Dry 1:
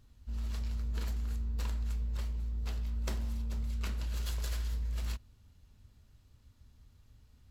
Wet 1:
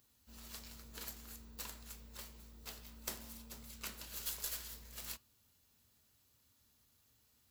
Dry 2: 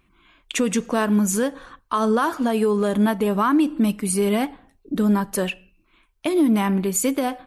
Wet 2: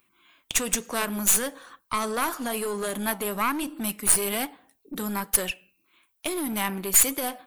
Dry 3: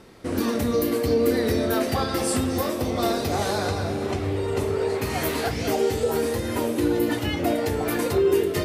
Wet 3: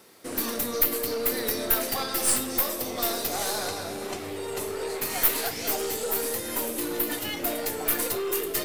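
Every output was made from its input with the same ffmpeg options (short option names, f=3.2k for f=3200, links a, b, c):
-filter_complex "[0:a]highpass=f=93:p=1,aemphasis=mode=production:type=bsi,aeval=exprs='0.944*(cos(1*acos(clip(val(0)/0.944,-1,1)))-cos(1*PI/2))+0.15*(cos(6*acos(clip(val(0)/0.944,-1,1)))-cos(6*PI/2))':c=same,flanger=delay=1.4:depth=4.3:regen=-89:speed=1.1:shape=triangular,acrossover=split=890[a][b];[a]volume=28dB,asoftclip=hard,volume=-28dB[c];[c][b]amix=inputs=2:normalize=0"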